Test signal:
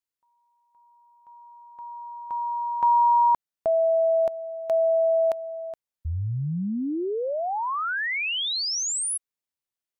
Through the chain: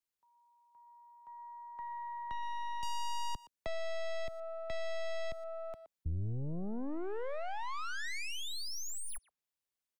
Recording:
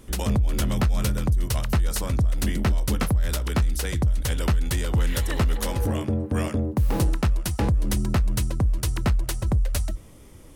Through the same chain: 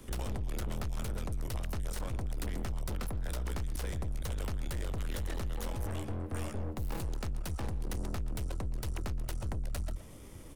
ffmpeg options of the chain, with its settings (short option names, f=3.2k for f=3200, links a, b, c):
-filter_complex "[0:a]aeval=exprs='(tanh(28.2*val(0)+0.6)-tanh(0.6))/28.2':c=same,asplit=2[a][b];[b]adelay=120,highpass=300,lowpass=3.4k,asoftclip=type=hard:threshold=-34.5dB,volume=-15dB[c];[a][c]amix=inputs=2:normalize=0,acrossover=split=100|330|1400|4400[d][e][f][g][h];[d]acompressor=threshold=-36dB:ratio=2[i];[e]acompressor=threshold=-49dB:ratio=3[j];[f]acompressor=threshold=-45dB:ratio=4[k];[g]acompressor=threshold=-52dB:ratio=5[l];[h]acompressor=threshold=-48dB:ratio=5[m];[i][j][k][l][m]amix=inputs=5:normalize=0,volume=1dB"